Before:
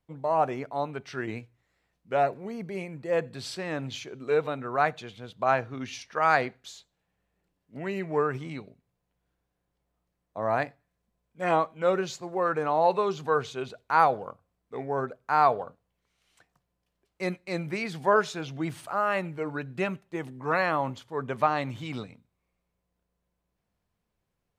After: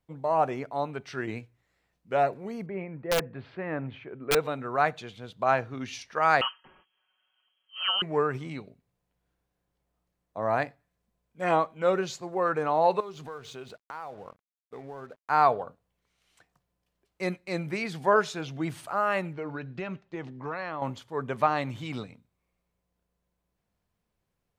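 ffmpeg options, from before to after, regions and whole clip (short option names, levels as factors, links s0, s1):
-filter_complex "[0:a]asettb=1/sr,asplit=3[s0][s1][s2];[s0]atrim=end=2.664[s3];[s1]atrim=start=2.66:end=4.35,asetpts=PTS-STARTPTS,afade=t=in:d=0.004:c=qsin,afade=t=out:st=1.686:d=0.004:c=qsin,lowpass=f=2200:w=0.5412,lowpass=f=2200:w=1.3066,aeval=exprs='(mod(8.91*val(0)+1,2)-1)/8.91':c=same[s4];[s2]atrim=start=4.346[s5];[s3][s4]acrossfade=d=0.004:c1=hsin:c2=qsin[s6];[s6][s5]acrossfade=d=0.004:c1=qsin:c2=hsin,asettb=1/sr,asplit=3[s7][s8][s9];[s7]atrim=end=6.414[s10];[s8]atrim=start=6.41:end=8.02,asetpts=PTS-STARTPTS,afade=t=in:d=0.004:c=qsin,afade=t=out:st=1.606:d=0.004:c=qsin,equalizer=f=2100:w=3.1:g=7,aecho=1:1:5.5:0.74,atrim=end_sample=71001,lowpass=f=2800:t=q:w=0.5098,lowpass=f=2800:t=q:w=0.6013,lowpass=f=2800:t=q:w=0.9,lowpass=f=2800:t=q:w=2.563,afreqshift=-3300[s11];[s9]atrim=start=8.016[s12];[s10][s11]acrossfade=d=0.004:c1=hsin:c2=qsin[s13];[s13][s12]acrossfade=d=0.004:c1=qsin:c2=hsin,asettb=1/sr,asplit=3[s14][s15][s16];[s14]atrim=end=13.004[s17];[s15]atrim=start=13:end=15.3,asetpts=PTS-STARTPTS,afade=t=in:d=0.004:c=qsin,afade=t=out:st=2.296:d=0.004:c=qsin,acompressor=threshold=0.0126:ratio=4:attack=3.2:release=140:knee=1:detection=peak,aeval=exprs='sgn(val(0))*max(abs(val(0))-0.00119,0)':c=same[s18];[s16]atrim=start=15.296[s19];[s17][s18]acrossfade=d=0.004:c1=hsin:c2=qsin[s20];[s20][s19]acrossfade=d=0.004:c1=qsin:c2=hsin,asettb=1/sr,asplit=3[s21][s22][s23];[s21]atrim=end=19.334[s24];[s22]atrim=start=19.33:end=20.82,asetpts=PTS-STARTPTS,afade=t=in:d=0.004:c=qsin,afade=t=out:st=1.486:d=0.004:c=qsin,lowpass=f=5700:w=0.5412,lowpass=f=5700:w=1.3066,acompressor=threshold=0.0282:ratio=4:attack=3.2:release=140:knee=1:detection=peak[s25];[s23]atrim=start=20.816[s26];[s24][s25]acrossfade=d=0.004:c1=hsin:c2=qsin[s27];[s27][s26]acrossfade=d=0.004:c1=qsin:c2=hsin"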